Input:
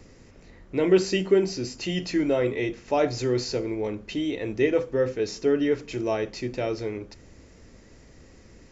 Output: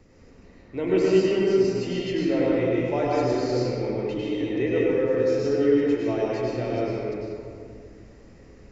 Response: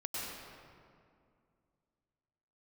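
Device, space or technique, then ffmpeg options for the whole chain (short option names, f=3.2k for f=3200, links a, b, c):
swimming-pool hall: -filter_complex "[1:a]atrim=start_sample=2205[a];[0:a][a]afir=irnorm=-1:irlink=0,highshelf=f=3.9k:g=-7.5,volume=-1dB"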